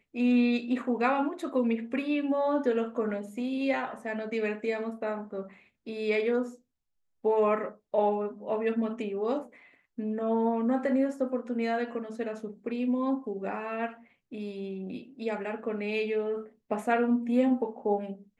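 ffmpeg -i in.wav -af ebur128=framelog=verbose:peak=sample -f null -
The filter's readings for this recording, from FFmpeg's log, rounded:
Integrated loudness:
  I:         -30.0 LUFS
  Threshold: -40.3 LUFS
Loudness range:
  LRA:         5.0 LU
  Threshold: -50.9 LUFS
  LRA low:   -34.1 LUFS
  LRA high:  -29.1 LUFS
Sample peak:
  Peak:      -11.7 dBFS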